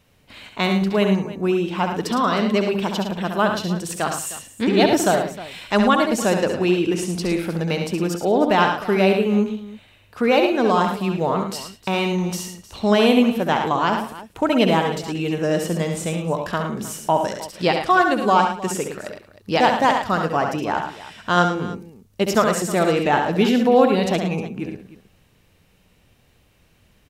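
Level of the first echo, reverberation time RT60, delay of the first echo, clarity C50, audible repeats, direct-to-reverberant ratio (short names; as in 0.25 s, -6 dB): -6.5 dB, none, 68 ms, none, 4, none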